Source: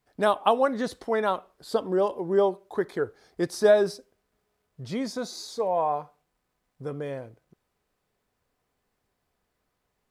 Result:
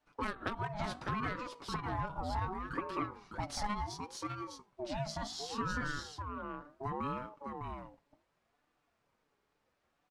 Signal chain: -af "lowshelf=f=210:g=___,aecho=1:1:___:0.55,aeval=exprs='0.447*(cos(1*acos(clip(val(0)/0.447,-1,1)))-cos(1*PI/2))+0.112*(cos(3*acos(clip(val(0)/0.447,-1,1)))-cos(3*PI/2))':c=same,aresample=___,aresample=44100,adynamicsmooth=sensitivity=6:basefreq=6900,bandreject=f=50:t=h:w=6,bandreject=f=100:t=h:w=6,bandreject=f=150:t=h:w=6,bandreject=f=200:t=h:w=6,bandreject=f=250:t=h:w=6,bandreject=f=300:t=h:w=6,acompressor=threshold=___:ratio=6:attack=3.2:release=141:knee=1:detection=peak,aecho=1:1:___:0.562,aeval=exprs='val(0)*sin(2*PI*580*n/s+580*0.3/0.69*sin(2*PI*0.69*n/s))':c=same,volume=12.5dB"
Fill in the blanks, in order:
-2.5, 6.9, 32000, -43dB, 605